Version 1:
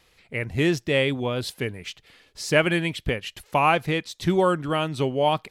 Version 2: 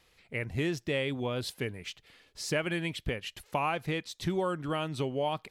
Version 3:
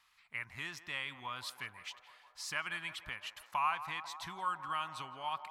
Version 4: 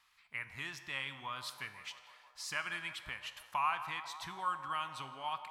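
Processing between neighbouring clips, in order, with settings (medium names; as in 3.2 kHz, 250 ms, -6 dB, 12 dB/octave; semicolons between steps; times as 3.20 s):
compression 3:1, threshold -23 dBFS, peak gain reduction 7.5 dB; trim -5 dB
resonant low shelf 710 Hz -14 dB, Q 3; band-passed feedback delay 164 ms, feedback 84%, band-pass 780 Hz, level -12 dB; trim -5.5 dB
feedback comb 68 Hz, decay 1.1 s, harmonics all, mix 60%; trim +6.5 dB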